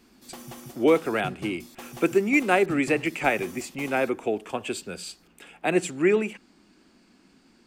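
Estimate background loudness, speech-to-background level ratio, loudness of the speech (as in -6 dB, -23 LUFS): -42.5 LUFS, 17.5 dB, -25.0 LUFS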